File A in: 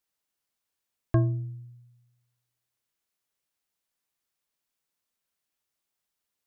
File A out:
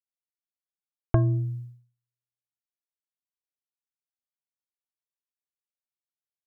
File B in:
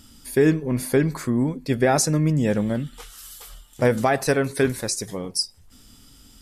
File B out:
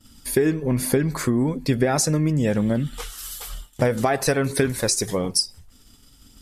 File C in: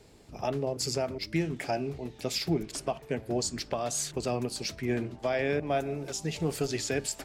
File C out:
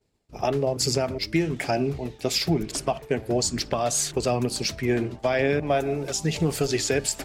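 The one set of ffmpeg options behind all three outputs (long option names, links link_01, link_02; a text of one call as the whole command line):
ffmpeg -i in.wav -af "aphaser=in_gain=1:out_gain=1:delay=2.9:decay=0.24:speed=1.1:type=triangular,agate=range=-33dB:threshold=-40dB:ratio=3:detection=peak,acompressor=threshold=-24dB:ratio=6,volume=7dB" out.wav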